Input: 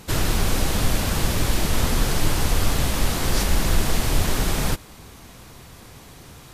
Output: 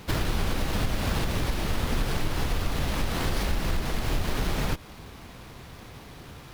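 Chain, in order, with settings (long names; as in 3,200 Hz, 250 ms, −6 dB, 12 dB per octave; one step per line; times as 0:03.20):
downward compressor, threshold −21 dBFS, peak gain reduction 9 dB
windowed peak hold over 5 samples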